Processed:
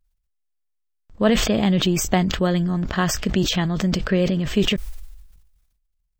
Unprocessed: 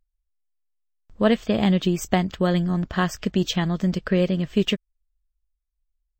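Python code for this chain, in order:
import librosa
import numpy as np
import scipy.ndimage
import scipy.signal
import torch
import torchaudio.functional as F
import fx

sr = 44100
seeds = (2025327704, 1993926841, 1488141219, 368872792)

y = fx.transient(x, sr, attack_db=1, sustain_db=8)
y = fx.sustainer(y, sr, db_per_s=49.0)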